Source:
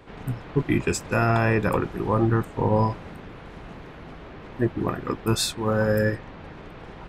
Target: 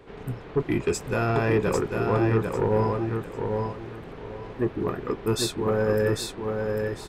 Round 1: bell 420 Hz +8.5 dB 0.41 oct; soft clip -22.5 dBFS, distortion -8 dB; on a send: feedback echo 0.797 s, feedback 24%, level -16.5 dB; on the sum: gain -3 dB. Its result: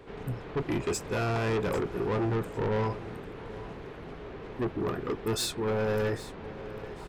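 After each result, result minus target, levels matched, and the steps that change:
echo-to-direct -12 dB; soft clip: distortion +10 dB
change: feedback echo 0.797 s, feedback 24%, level -4.5 dB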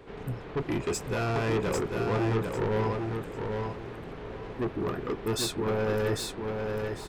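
soft clip: distortion +10 dB
change: soft clip -12.5 dBFS, distortion -18 dB

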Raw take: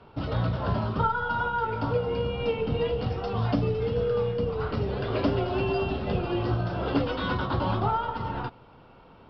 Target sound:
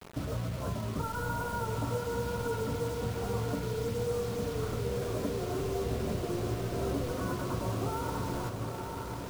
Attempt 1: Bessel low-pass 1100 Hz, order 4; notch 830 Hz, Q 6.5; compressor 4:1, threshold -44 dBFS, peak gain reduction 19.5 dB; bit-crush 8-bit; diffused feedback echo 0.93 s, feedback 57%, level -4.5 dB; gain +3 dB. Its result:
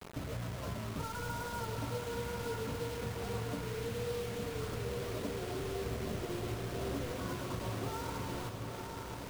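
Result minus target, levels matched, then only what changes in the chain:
compressor: peak gain reduction +5.5 dB
change: compressor 4:1, threshold -36.5 dBFS, peak gain reduction 13.5 dB

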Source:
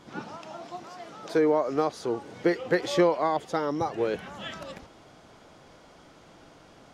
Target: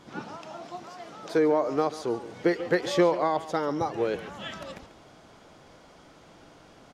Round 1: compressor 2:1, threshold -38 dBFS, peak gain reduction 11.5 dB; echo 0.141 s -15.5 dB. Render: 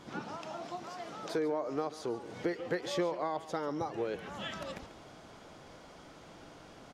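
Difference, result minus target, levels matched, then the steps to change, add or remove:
compressor: peak gain reduction +11.5 dB
remove: compressor 2:1, threshold -38 dBFS, peak gain reduction 11.5 dB

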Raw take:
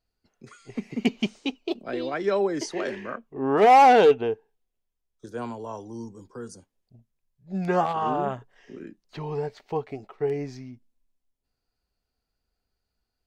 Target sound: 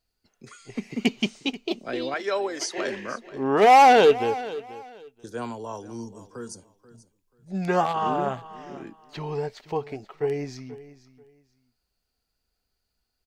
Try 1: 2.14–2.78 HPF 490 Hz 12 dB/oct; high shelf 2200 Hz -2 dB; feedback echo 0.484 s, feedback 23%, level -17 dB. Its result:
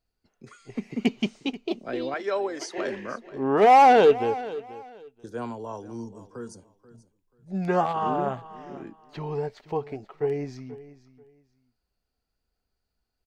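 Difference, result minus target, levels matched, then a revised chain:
4000 Hz band -5.0 dB
2.14–2.78 HPF 490 Hz 12 dB/oct; high shelf 2200 Hz +6.5 dB; feedback echo 0.484 s, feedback 23%, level -17 dB

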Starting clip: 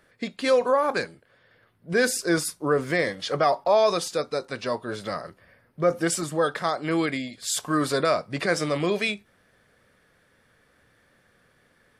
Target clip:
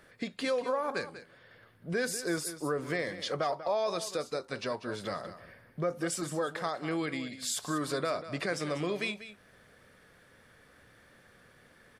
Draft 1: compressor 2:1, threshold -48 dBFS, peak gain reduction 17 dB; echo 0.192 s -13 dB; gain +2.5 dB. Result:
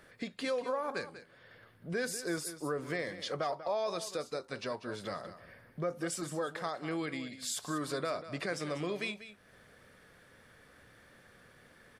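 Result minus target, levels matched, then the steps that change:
compressor: peak gain reduction +3.5 dB
change: compressor 2:1, threshold -41.5 dBFS, peak gain reduction 14 dB

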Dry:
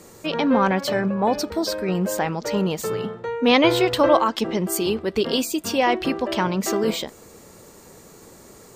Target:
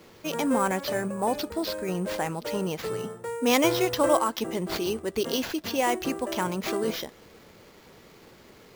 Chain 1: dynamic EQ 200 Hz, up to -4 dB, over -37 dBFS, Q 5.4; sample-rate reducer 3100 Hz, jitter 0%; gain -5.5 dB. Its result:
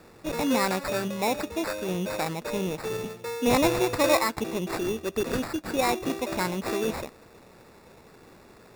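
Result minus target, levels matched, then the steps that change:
sample-rate reducer: distortion +6 dB
change: sample-rate reducer 9000 Hz, jitter 0%

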